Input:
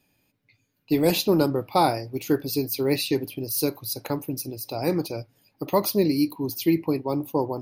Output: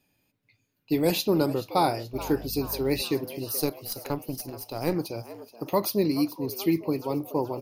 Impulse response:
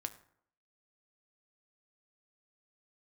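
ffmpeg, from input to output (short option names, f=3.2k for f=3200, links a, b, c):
-filter_complex "[0:a]asettb=1/sr,asplit=3[a][b][c];[a]atrim=end=2.134[d];[b]atrim=start=2.13:end=3.02,asetpts=PTS-STARTPTS,afade=t=in:d=0.004:c=qsin,afade=t=out:st=0.886:d=0.004:c=qsin,aeval=exprs='val(0)+0.0141*(sin(2*PI*50*n/s)+sin(2*PI*2*50*n/s)/2+sin(2*PI*3*50*n/s)/3+sin(2*PI*4*50*n/s)/4+sin(2*PI*5*50*n/s)/5)':c=same[e];[c]atrim=start=3.016[f];[d][e]acrossfade=d=0.004:c1=hsin:c2=qsin[g];[g][f]acrossfade=d=0.004:c1=qsin:c2=hsin,asplit=3[h][i][j];[h]afade=t=out:st=3.6:d=0.02[k];[i]aeval=exprs='0.299*(cos(1*acos(clip(val(0)/0.299,-1,1)))-cos(1*PI/2))+0.0473*(cos(2*acos(clip(val(0)/0.299,-1,1)))-cos(2*PI/2))+0.0106*(cos(4*acos(clip(val(0)/0.299,-1,1)))-cos(4*PI/2))+0.015*(cos(6*acos(clip(val(0)/0.299,-1,1)))-cos(6*PI/2))+0.0106*(cos(7*acos(clip(val(0)/0.299,-1,1)))-cos(7*PI/2))':c=same,afade=t=in:st=3.6:d=0.02,afade=t=out:st=4.93:d=0.02[l];[j]afade=t=in:st=4.93:d=0.02[m];[k][l][m]amix=inputs=3:normalize=0,asplit=6[n][o][p][q][r][s];[o]adelay=428,afreqshift=110,volume=-16dB[t];[p]adelay=856,afreqshift=220,volume=-21.8dB[u];[q]adelay=1284,afreqshift=330,volume=-27.7dB[v];[r]adelay=1712,afreqshift=440,volume=-33.5dB[w];[s]adelay=2140,afreqshift=550,volume=-39.4dB[x];[n][t][u][v][w][x]amix=inputs=6:normalize=0,volume=-3dB"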